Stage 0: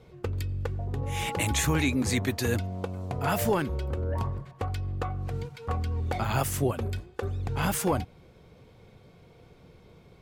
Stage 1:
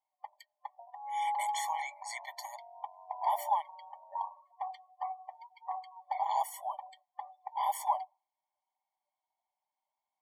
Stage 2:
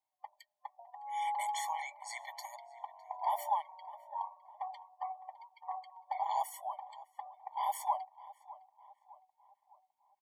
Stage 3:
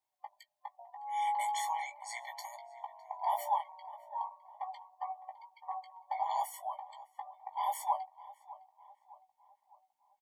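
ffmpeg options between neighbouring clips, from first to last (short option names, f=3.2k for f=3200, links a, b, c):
-af "afftdn=nr=25:nf=-44,superequalizer=6b=2.82:9b=3.98,afftfilt=real='re*eq(mod(floor(b*sr/1024/590),2),1)':imag='im*eq(mod(floor(b*sr/1024/590),2),1)':win_size=1024:overlap=0.75,volume=-7.5dB"
-filter_complex "[0:a]asplit=2[a][b];[b]adelay=608,lowpass=f=1.9k:p=1,volume=-17dB,asplit=2[c][d];[d]adelay=608,lowpass=f=1.9k:p=1,volume=0.51,asplit=2[e][f];[f]adelay=608,lowpass=f=1.9k:p=1,volume=0.51,asplit=2[g][h];[h]adelay=608,lowpass=f=1.9k:p=1,volume=0.51[i];[a][c][e][g][i]amix=inputs=5:normalize=0,volume=-2.5dB"
-filter_complex "[0:a]asplit=2[a][b];[b]adelay=17,volume=-6.5dB[c];[a][c]amix=inputs=2:normalize=0"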